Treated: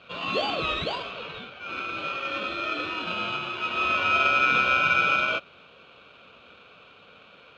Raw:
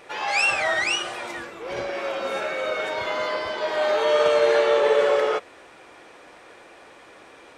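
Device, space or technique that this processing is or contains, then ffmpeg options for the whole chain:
ring modulator pedal into a guitar cabinet: -filter_complex "[0:a]highpass=f=370:w=0.5412,highpass=f=370:w=1.3066,aeval=exprs='val(0)*sgn(sin(2*PI*1900*n/s))':c=same,highpass=81,equalizer=f=130:t=q:w=4:g=-4,equalizer=f=560:t=q:w=4:g=4,equalizer=f=860:t=q:w=4:g=-7,lowpass=f=3.5k:w=0.5412,lowpass=f=3.5k:w=1.3066,equalizer=f=5k:w=3.8:g=-5.5,asettb=1/sr,asplit=3[a][b][c];[a]atrim=end=1.114[d];[b]atrim=start=1.11:end=1.61,asetpts=PTS-STARTPTS,afade=t=in:d=0.004:c=qsin,afade=t=out:st=0.496:d=0.004:c=qsin,lowpass=6.4k[e];[c]atrim=start=1.606[f];[d][e]acrossfade=d=0.004:c1=hsin:c2=qsin[g];[g][f]acrossfade=d=0.004:c1=qsin:c2=hsin,volume=-1.5dB"

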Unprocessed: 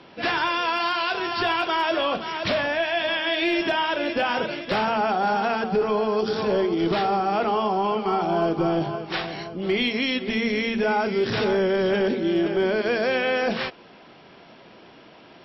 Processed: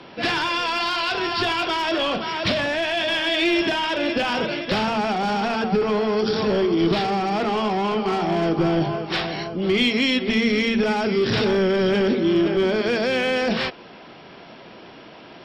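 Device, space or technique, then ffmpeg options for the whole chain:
one-band saturation: -filter_complex "[0:a]acrossover=split=340|2600[a][b][c];[b]asoftclip=type=tanh:threshold=-29dB[d];[a][d][c]amix=inputs=3:normalize=0,volume=5.5dB"

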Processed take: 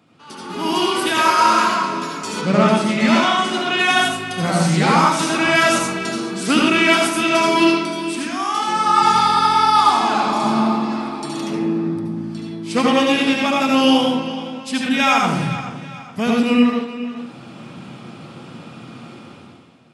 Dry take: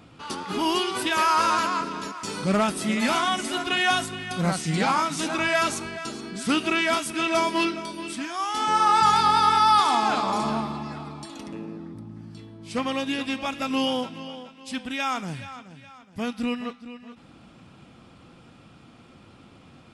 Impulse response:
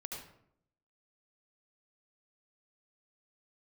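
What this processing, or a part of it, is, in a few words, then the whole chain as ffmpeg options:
far laptop microphone: -filter_complex "[1:a]atrim=start_sample=2205[a];[0:a][a]afir=irnorm=-1:irlink=0,highpass=f=120:w=0.5412,highpass=f=120:w=1.3066,dynaudnorm=f=100:g=13:m=16dB,asettb=1/sr,asplit=3[b][c][d];[b]atrim=end=2.414[e];[c]atrim=start=2.41:end=3.79,asetpts=PTS-STARTPTS,afade=t=in:d=0.004:c=qsin,afade=t=out:st=1.376:d=0.004:c=qsin,lowpass=6.1k[f];[d]atrim=start=3.786[g];[e][f]acrossfade=d=0.004:c1=hsin:c2=qsin[h];[h][g]acrossfade=d=0.004:c1=qsin:c2=hsin,volume=-1dB"

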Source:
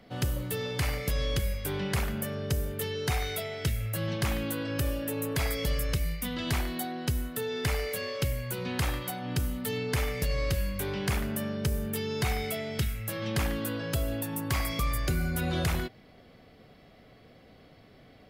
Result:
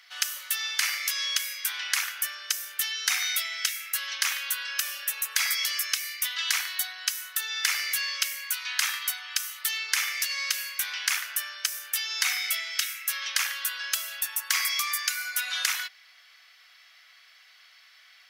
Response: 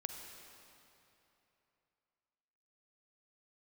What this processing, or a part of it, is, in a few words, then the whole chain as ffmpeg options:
headphones lying on a table: -filter_complex "[0:a]highpass=f=1.4k:w=0.5412,highpass=f=1.4k:w=1.3066,equalizer=f=5.9k:t=o:w=0.42:g=8,asettb=1/sr,asplit=3[a][b][c];[a]atrim=end=8.444[d];[b]atrim=start=8.44:end=9.62,asetpts=PTS-STARTPTS,afade=t=in:d=0.004:c=qsin,afade=t=out:st=1.176:d=0.004:c=qsin,highpass=f=710:w=0.5412,highpass=f=710:w=1.3066[e];[c]atrim=start=9.616[f];[d][e]acrossfade=d=0.004:c1=hsin:c2=qsin[g];[g][f]acrossfade=d=0.004:c1=qsin:c2=hsin,volume=8.5dB"

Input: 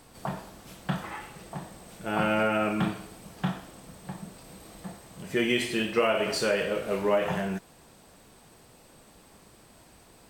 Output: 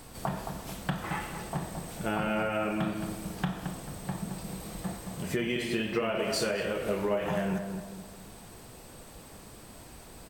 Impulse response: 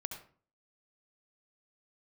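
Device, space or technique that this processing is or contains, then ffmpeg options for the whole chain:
ASMR close-microphone chain: -filter_complex "[0:a]asettb=1/sr,asplit=3[a][b][c];[a]atrim=end=5.364[d];[b]atrim=start=5.36:end=6.19,asetpts=PTS-STARTPTS,afade=t=in:d=0.004:c=qsin,afade=t=out:st=0.826:d=0.004:c=qsin,equalizer=f=9.5k:t=o:w=1.7:g=-6[e];[c]atrim=start=6.186[f];[d][e]acrossfade=d=0.004:c1=hsin:c2=qsin[g];[g][f]acrossfade=d=0.004:c1=qsin:c2=hsin,lowshelf=f=110:g=6,acompressor=threshold=-32dB:ratio=6,highshelf=f=9.7k:g=5,asplit=2[h][i];[i]adelay=220,lowpass=f=1.3k:p=1,volume=-6dB,asplit=2[j][k];[k]adelay=220,lowpass=f=1.3k:p=1,volume=0.44,asplit=2[l][m];[m]adelay=220,lowpass=f=1.3k:p=1,volume=0.44,asplit=2[n][o];[o]adelay=220,lowpass=f=1.3k:p=1,volume=0.44,asplit=2[p][q];[q]adelay=220,lowpass=f=1.3k:p=1,volume=0.44[r];[h][j][l][n][p][r]amix=inputs=6:normalize=0,volume=4dB"

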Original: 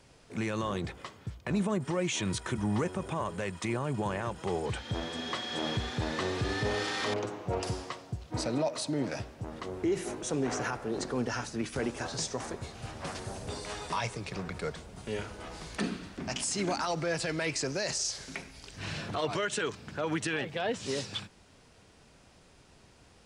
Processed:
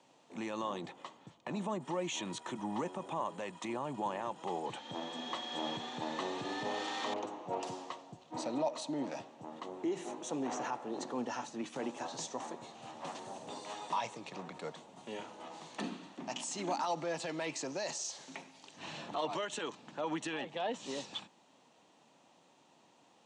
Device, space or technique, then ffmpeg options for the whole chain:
television speaker: -af "highpass=f=190:w=0.5412,highpass=f=190:w=1.3066,equalizer=f=200:t=q:w=4:g=-5,equalizer=f=420:t=q:w=4:g=-7,equalizer=f=880:t=q:w=4:g=6,equalizer=f=1.5k:t=q:w=4:g=-9,equalizer=f=2.2k:t=q:w=4:g=-6,equalizer=f=5k:t=q:w=4:g=-10,lowpass=f=7.4k:w=0.5412,lowpass=f=7.4k:w=1.3066,volume=-3dB"

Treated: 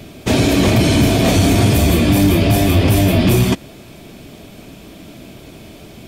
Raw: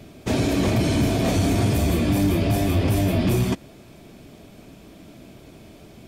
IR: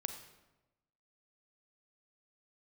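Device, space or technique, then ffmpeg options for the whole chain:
presence and air boost: -af "equalizer=f=3.1k:t=o:w=1.1:g=3.5,highshelf=f=9.7k:g=5,volume=7.5dB"

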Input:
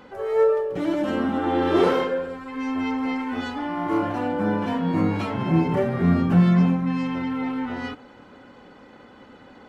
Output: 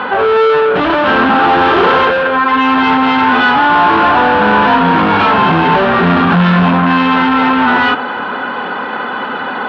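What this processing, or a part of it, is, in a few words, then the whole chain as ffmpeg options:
overdrive pedal into a guitar cabinet: -filter_complex "[0:a]asplit=2[a][b];[b]highpass=f=720:p=1,volume=34dB,asoftclip=type=tanh:threshold=-8dB[c];[a][c]amix=inputs=2:normalize=0,lowpass=f=3.7k:p=1,volume=-6dB,highpass=77,equalizer=f=120:t=q:w=4:g=-9,equalizer=f=310:t=q:w=4:g=-7,equalizer=f=550:t=q:w=4:g=-6,equalizer=f=980:t=q:w=4:g=3,equalizer=f=1.5k:t=q:w=4:g=4,equalizer=f=2.1k:t=q:w=4:g=-7,lowpass=f=3.4k:w=0.5412,lowpass=f=3.4k:w=1.3066,volume=6dB"

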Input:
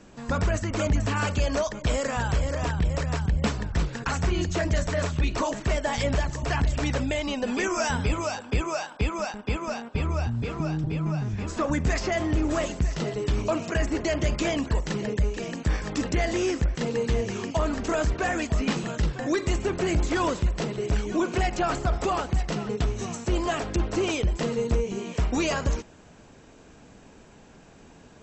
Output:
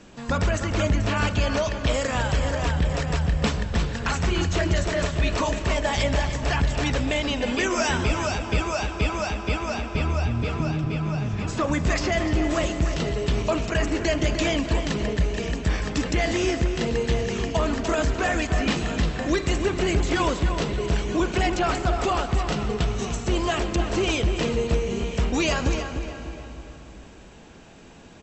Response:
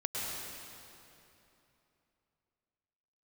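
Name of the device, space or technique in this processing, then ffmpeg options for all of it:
compressed reverb return: -filter_complex "[0:a]asettb=1/sr,asplit=3[a][b][c];[a]atrim=end=0.664[d];[b]atrim=start=0.66:end=1.94,asetpts=PTS-STARTPTS,afade=t=in:d=0.004:c=qsin,afade=t=out:st=1.276:d=0.004:c=qsin,lowpass=6.8k[e];[c]atrim=start=1.936[f];[d][e]acrossfade=d=0.004:c1=hsin:c2=qsin[g];[g][f]acrossfade=d=0.004:c1=qsin:c2=hsin,equalizer=f=3.2k:t=o:w=1.2:g=4.5,asplit=2[h][i];[i]adelay=299,lowpass=f=3.2k:p=1,volume=-8dB,asplit=2[j][k];[k]adelay=299,lowpass=f=3.2k:p=1,volume=0.43,asplit=2[l][m];[m]adelay=299,lowpass=f=3.2k:p=1,volume=0.43,asplit=2[n][o];[o]adelay=299,lowpass=f=3.2k:p=1,volume=0.43,asplit=2[p][q];[q]adelay=299,lowpass=f=3.2k:p=1,volume=0.43[r];[h][j][l][n][p][r]amix=inputs=6:normalize=0,asplit=2[s][t];[1:a]atrim=start_sample=2205[u];[t][u]afir=irnorm=-1:irlink=0,acompressor=threshold=-20dB:ratio=6,volume=-11dB[v];[s][v]amix=inputs=2:normalize=0"

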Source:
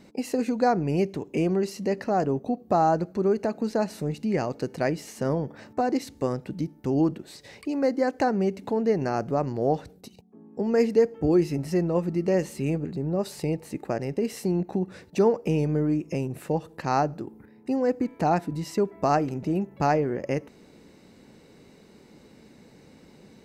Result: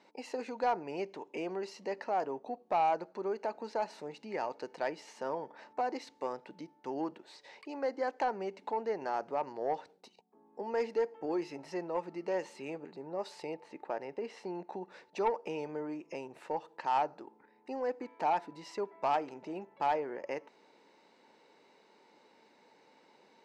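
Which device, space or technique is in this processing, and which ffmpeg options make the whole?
intercom: -filter_complex "[0:a]asettb=1/sr,asplit=3[a][b][c];[a]atrim=end=13.544[d];[b]atrim=start=13.54:end=14.55,asetpts=PTS-STARTPTS,afade=t=in:d=0.004:c=qsin,afade=t=out:st=1.006:d=0.004:c=qsin,aemphasis=mode=reproduction:type=50fm[e];[c]atrim=start=14.546[f];[d][e]acrossfade=d=0.004:c1=hsin:c2=qsin[g];[g][f]acrossfade=d=0.004:c1=qsin:c2=hsin,highpass=500,lowpass=4.9k,equalizer=f=910:t=o:w=0.22:g=10.5,asoftclip=type=tanh:threshold=-16dB,volume=-6dB"

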